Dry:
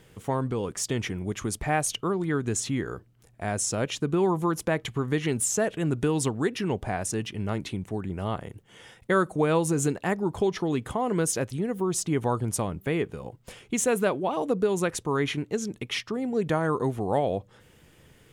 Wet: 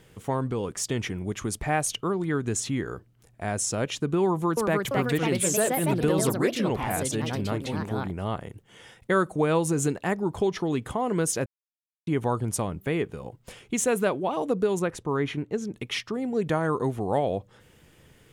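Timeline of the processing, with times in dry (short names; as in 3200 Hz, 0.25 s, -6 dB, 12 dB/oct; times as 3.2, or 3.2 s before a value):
4.23–8.44 echoes that change speed 0.34 s, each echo +3 st, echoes 2
11.46–12.07 mute
14.79–15.75 high shelf 2700 Hz -9.5 dB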